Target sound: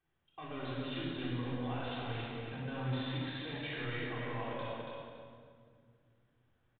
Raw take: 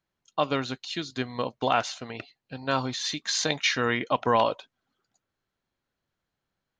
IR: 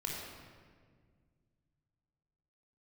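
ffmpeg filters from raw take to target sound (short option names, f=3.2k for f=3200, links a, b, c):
-filter_complex "[0:a]areverse,acompressor=threshold=-32dB:ratio=6,areverse,alimiter=level_in=6dB:limit=-24dB:level=0:latency=1:release=24,volume=-6dB,asoftclip=type=tanh:threshold=-39dB,aecho=1:1:281|562|843:0.562|0.124|0.0272[a];[1:a]atrim=start_sample=2205,asetrate=36162,aresample=44100[b];[a][b]afir=irnorm=-1:irlink=0,aresample=8000,aresample=44100"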